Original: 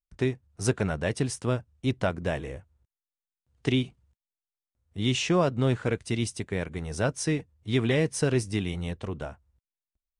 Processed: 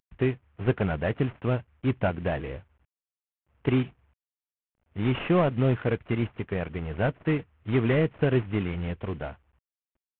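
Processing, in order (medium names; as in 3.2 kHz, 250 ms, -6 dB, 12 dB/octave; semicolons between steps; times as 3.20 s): CVSD coder 16 kbps; trim +2 dB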